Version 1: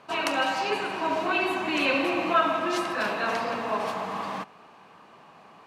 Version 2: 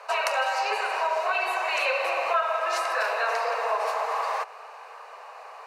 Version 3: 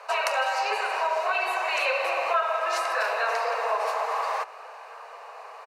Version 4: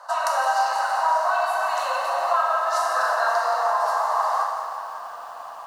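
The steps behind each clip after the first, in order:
Butterworth high-pass 450 Hz 72 dB per octave; parametric band 3,300 Hz −11.5 dB 0.27 octaves; downward compressor 3 to 1, threshold −34 dBFS, peak gain reduction 12.5 dB; level +9 dB
slap from a distant wall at 290 metres, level −21 dB
phaser with its sweep stopped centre 1,000 Hz, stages 4; dense smooth reverb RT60 2 s, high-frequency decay 0.85×, DRR −0.5 dB; feedback echo at a low word length 172 ms, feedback 80%, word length 8 bits, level −15 dB; level +2.5 dB

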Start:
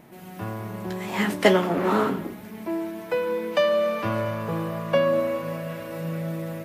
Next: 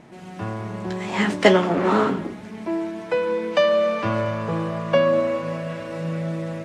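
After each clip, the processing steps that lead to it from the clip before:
low-pass filter 8,100 Hz 24 dB per octave
level +3 dB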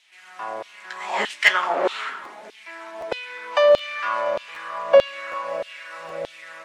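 auto-filter high-pass saw down 1.6 Hz 510–3,500 Hz
regular buffer underruns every 0.77 s, samples 512, repeat, from 0:00.69
level −1 dB

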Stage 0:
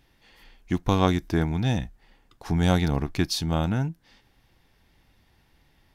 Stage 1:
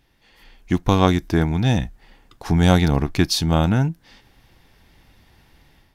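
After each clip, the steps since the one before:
automatic gain control gain up to 8.5 dB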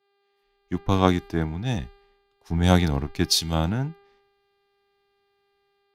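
hum with harmonics 400 Hz, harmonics 12, −41 dBFS −6 dB per octave
multiband upward and downward expander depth 100%
level −7.5 dB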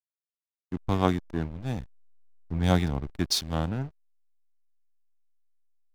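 slack as between gear wheels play −25.5 dBFS
level −4.5 dB

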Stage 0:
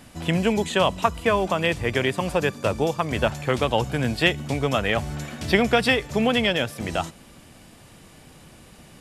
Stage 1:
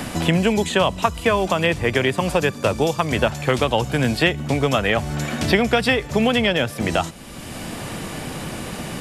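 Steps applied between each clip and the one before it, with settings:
multiband upward and downward compressor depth 70%
level +3 dB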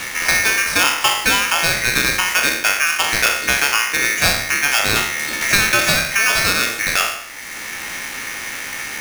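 peak hold with a decay on every bin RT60 0.72 s
ring modulator with a square carrier 2,000 Hz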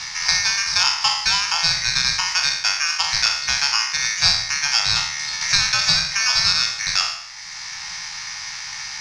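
drawn EQ curve 170 Hz 0 dB, 260 Hz −27 dB, 570 Hz −14 dB, 880 Hz +3 dB, 1,400 Hz −2 dB, 3,100 Hz −1 dB, 5,100 Hz +14 dB, 13,000 Hz −29 dB
level −5.5 dB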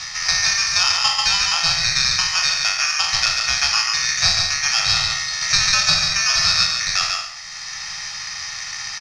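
comb filter 1.6 ms, depth 51%
single-tap delay 142 ms −4 dB
level −1 dB

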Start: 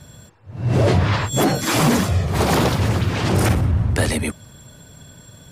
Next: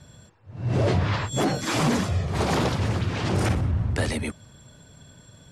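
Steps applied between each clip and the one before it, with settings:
low-pass filter 8,300 Hz 12 dB per octave
level −6 dB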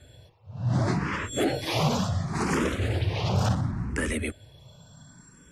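frequency shifter mixed with the dry sound +0.7 Hz
level +1 dB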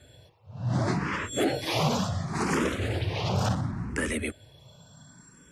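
low-shelf EQ 81 Hz −8.5 dB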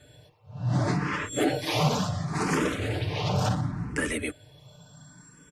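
comb filter 6.7 ms, depth 43%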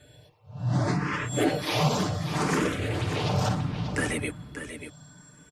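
single-tap delay 587 ms −9.5 dB

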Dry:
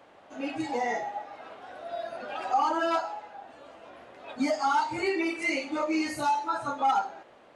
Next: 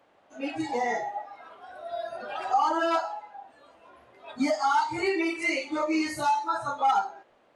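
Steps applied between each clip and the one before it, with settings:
noise reduction from a noise print of the clip's start 9 dB
level +1.5 dB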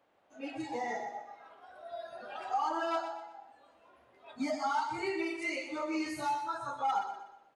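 repeating echo 123 ms, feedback 39%, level −9 dB
level −8.5 dB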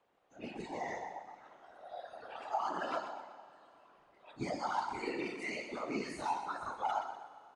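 downsampling to 22,050 Hz
random phases in short frames
four-comb reverb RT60 3.3 s, combs from 31 ms, DRR 15 dB
level −4 dB

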